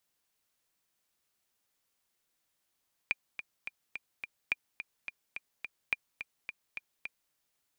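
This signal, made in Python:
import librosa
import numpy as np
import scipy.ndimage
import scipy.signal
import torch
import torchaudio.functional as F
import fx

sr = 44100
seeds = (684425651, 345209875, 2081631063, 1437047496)

y = fx.click_track(sr, bpm=213, beats=5, bars=3, hz=2400.0, accent_db=10.5, level_db=-15.0)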